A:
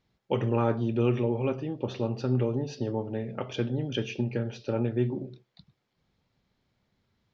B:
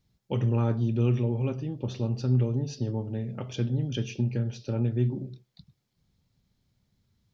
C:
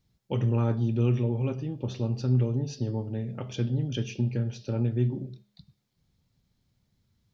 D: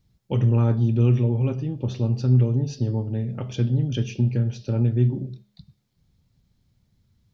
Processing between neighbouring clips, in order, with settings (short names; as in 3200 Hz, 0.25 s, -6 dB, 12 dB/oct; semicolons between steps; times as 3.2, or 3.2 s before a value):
tone controls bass +12 dB, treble +13 dB; gain -6.5 dB
de-hum 204.3 Hz, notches 26
low shelf 190 Hz +6.5 dB; gain +2 dB